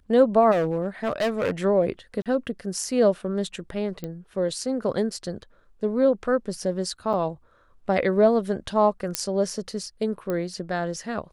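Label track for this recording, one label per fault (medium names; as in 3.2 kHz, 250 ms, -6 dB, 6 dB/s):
0.510000	1.510000	clipped -19.5 dBFS
2.220000	2.260000	dropout 37 ms
4.040000	4.040000	pop -19 dBFS
7.130000	7.140000	dropout 6 ms
9.150000	9.150000	pop -5 dBFS
10.300000	10.300000	pop -16 dBFS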